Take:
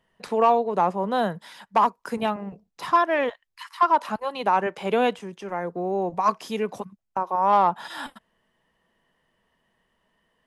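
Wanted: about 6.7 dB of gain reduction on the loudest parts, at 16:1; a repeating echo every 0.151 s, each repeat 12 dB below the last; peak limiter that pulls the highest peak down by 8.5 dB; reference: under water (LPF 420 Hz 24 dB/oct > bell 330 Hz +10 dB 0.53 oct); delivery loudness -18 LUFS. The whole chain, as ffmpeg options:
-af "acompressor=threshold=-20dB:ratio=16,alimiter=limit=-19.5dB:level=0:latency=1,lowpass=f=420:w=0.5412,lowpass=f=420:w=1.3066,equalizer=f=330:t=o:w=0.53:g=10,aecho=1:1:151|302|453:0.251|0.0628|0.0157,volume=14.5dB"

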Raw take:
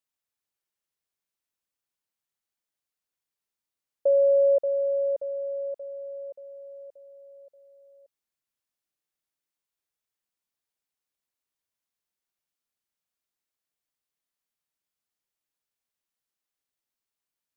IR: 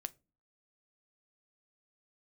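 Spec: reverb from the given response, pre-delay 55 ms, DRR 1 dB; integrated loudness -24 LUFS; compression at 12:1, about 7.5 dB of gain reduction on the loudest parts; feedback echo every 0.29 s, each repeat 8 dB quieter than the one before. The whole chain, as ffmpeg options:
-filter_complex "[0:a]acompressor=threshold=-25dB:ratio=12,aecho=1:1:290|580|870|1160|1450:0.398|0.159|0.0637|0.0255|0.0102,asplit=2[a][b];[1:a]atrim=start_sample=2205,adelay=55[c];[b][c]afir=irnorm=-1:irlink=0,volume=1.5dB[d];[a][d]amix=inputs=2:normalize=0,volume=10.5dB"

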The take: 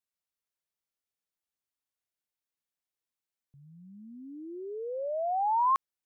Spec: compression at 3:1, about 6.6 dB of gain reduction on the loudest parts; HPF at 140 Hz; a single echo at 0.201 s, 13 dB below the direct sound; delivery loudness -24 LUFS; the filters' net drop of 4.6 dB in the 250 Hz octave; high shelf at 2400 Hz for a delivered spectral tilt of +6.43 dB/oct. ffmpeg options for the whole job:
-af "highpass=140,equalizer=f=250:t=o:g=-6,highshelf=f=2.4k:g=-8,acompressor=threshold=-34dB:ratio=3,aecho=1:1:201:0.224,volume=12.5dB"

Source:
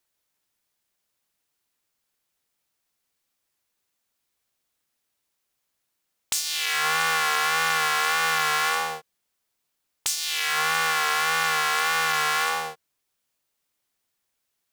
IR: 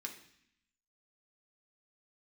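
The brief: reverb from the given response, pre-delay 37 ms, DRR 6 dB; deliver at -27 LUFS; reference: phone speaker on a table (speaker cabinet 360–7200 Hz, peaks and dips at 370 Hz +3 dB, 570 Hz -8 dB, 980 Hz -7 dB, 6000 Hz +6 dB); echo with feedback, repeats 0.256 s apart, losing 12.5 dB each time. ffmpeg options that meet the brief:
-filter_complex "[0:a]aecho=1:1:256|512|768:0.237|0.0569|0.0137,asplit=2[a][b];[1:a]atrim=start_sample=2205,adelay=37[c];[b][c]afir=irnorm=-1:irlink=0,volume=-4dB[d];[a][d]amix=inputs=2:normalize=0,highpass=f=360:w=0.5412,highpass=f=360:w=1.3066,equalizer=f=370:t=q:w=4:g=3,equalizer=f=570:t=q:w=4:g=-8,equalizer=f=980:t=q:w=4:g=-7,equalizer=f=6k:t=q:w=4:g=6,lowpass=f=7.2k:w=0.5412,lowpass=f=7.2k:w=1.3066,volume=-4.5dB"

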